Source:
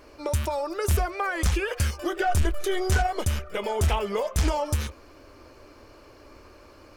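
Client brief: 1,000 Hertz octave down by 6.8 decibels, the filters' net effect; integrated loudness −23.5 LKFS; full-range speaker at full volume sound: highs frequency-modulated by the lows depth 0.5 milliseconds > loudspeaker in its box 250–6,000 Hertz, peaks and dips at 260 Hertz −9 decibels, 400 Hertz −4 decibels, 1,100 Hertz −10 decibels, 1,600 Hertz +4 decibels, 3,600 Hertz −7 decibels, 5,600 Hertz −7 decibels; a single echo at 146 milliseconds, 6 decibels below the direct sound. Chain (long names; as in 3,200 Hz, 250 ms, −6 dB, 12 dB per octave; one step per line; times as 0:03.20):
parametric band 1,000 Hz −7.5 dB
single-tap delay 146 ms −6 dB
highs frequency-modulated by the lows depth 0.5 ms
loudspeaker in its box 250–6,000 Hz, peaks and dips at 260 Hz −9 dB, 400 Hz −4 dB, 1,100 Hz −10 dB, 1,600 Hz +4 dB, 3,600 Hz −7 dB, 5,600 Hz −7 dB
level +9.5 dB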